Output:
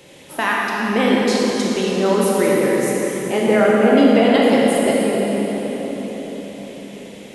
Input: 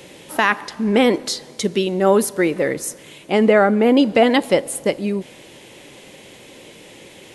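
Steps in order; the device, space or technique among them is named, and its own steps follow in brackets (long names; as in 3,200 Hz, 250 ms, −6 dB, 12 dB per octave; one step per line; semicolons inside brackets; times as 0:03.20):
cathedral (convolution reverb RT60 5.1 s, pre-delay 20 ms, DRR −5 dB)
level −5 dB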